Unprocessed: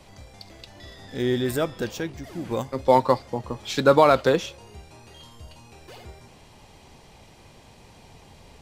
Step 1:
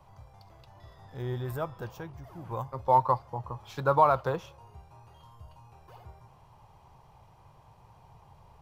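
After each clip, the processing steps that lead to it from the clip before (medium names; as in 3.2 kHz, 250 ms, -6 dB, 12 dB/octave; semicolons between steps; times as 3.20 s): graphic EQ 125/250/500/1000/2000/4000/8000 Hz +8/-12/-3/+10/-8/-8/-11 dB; trim -7.5 dB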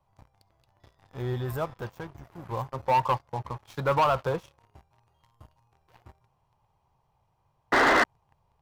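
painted sound noise, 7.72–8.04 s, 230–2100 Hz -18 dBFS; waveshaping leveller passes 3; trim -8.5 dB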